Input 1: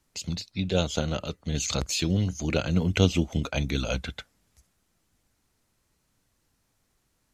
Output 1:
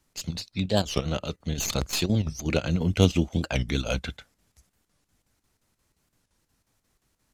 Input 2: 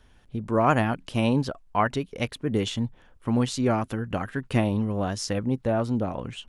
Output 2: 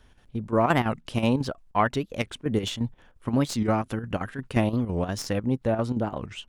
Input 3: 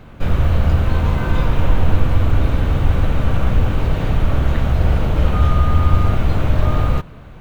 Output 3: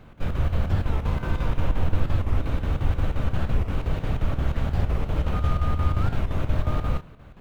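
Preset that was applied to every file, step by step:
stylus tracing distortion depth 0.04 ms
square-wave tremolo 5.7 Hz, depth 60%, duty 75%
wow of a warped record 45 rpm, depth 250 cents
loudness normalisation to −27 LKFS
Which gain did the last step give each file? +1.0, +0.5, −7.5 decibels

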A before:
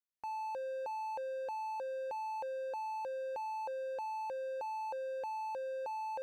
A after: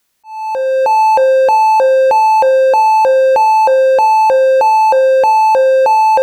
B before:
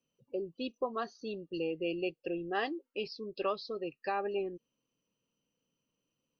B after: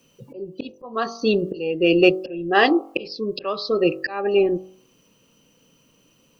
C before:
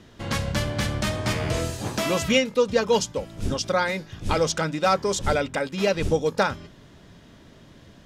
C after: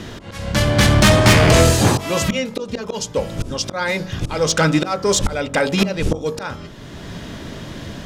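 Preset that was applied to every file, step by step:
volume swells 769 ms
soft clipping −23.5 dBFS
hum removal 46.67 Hz, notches 29
normalise the peak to −3 dBFS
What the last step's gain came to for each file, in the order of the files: +31.0, +25.5, +18.5 decibels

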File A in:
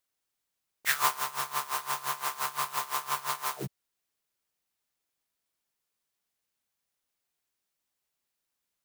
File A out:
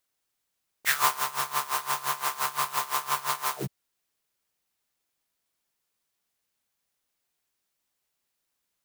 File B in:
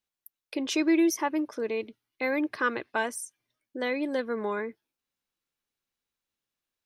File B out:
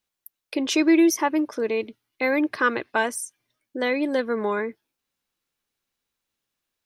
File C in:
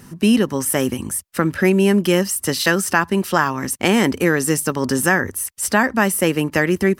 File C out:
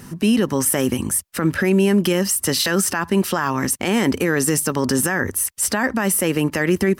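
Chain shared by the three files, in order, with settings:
boost into a limiter +11.5 dB
normalise the peak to −9 dBFS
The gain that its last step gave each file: −8.0, −6.0, −8.0 decibels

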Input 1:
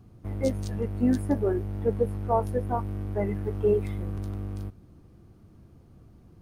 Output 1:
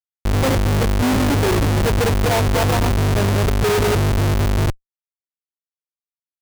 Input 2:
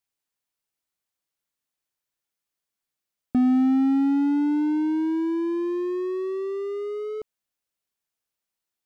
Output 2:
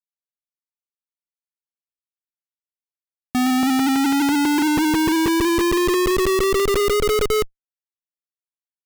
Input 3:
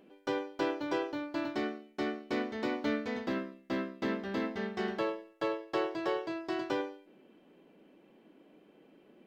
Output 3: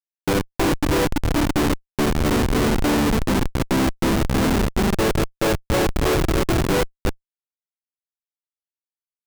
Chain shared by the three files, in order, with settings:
delay that plays each chunk backwards 165 ms, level −3 dB
comparator with hysteresis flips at −30.5 dBFS
normalise the peak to −12 dBFS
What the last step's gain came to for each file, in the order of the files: +10.0, +7.5, +16.5 decibels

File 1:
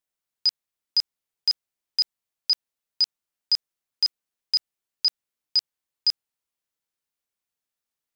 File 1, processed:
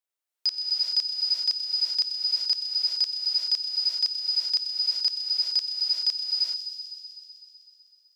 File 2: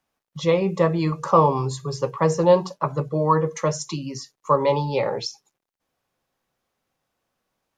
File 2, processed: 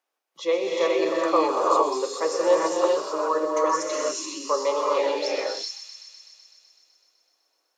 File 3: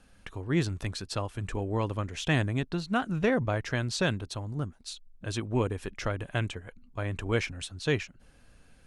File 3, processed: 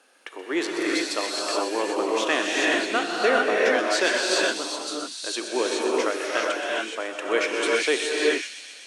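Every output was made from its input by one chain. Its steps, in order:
Butterworth high-pass 320 Hz 36 dB per octave
dynamic equaliser 920 Hz, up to −5 dB, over −37 dBFS, Q 2.7
on a send: delay with a high-pass on its return 126 ms, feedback 76%, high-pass 3,800 Hz, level −7 dB
on the sum: reverb whose tail is shaped and stops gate 450 ms rising, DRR −4 dB
loudness normalisation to −24 LKFS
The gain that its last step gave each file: −4.0, −3.5, +5.5 decibels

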